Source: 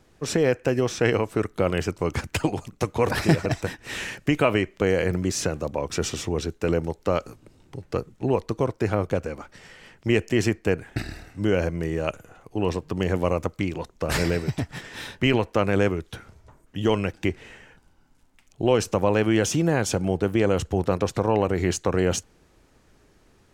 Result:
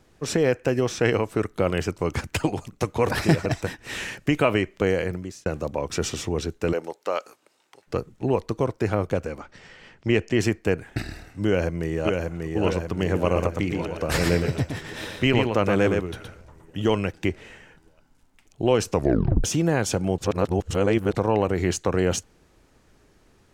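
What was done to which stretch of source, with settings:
4.87–5.46 s: fade out
6.72–7.86 s: high-pass 380 Hz -> 970 Hz
9.40–10.40 s: low-pass 6.1 kHz
11.46–12.57 s: echo throw 590 ms, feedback 65%, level -3.5 dB
13.24–16.85 s: delay 117 ms -4.5 dB
18.91 s: tape stop 0.53 s
20.18–21.15 s: reverse

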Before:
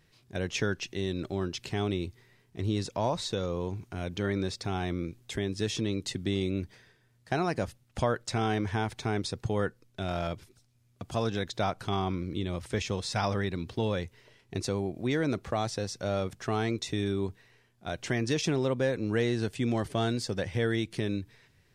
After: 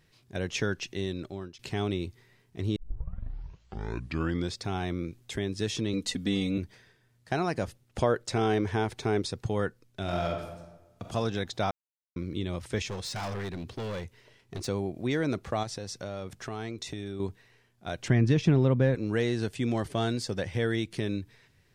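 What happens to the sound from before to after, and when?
1.01–1.59 s: fade out, to -16.5 dB
2.76 s: tape start 1.81 s
5.93–6.58 s: comb 4.1 ms, depth 91%
7.66–9.26 s: peaking EQ 410 Hz +6.5 dB
10.01–11.12 s: reverb throw, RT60 1.1 s, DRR 2 dB
11.71–12.16 s: mute
12.89–14.68 s: hard clipper -32 dBFS
15.63–17.20 s: compression 4:1, threshold -33 dBFS
18.08–18.95 s: tone controls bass +11 dB, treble -12 dB

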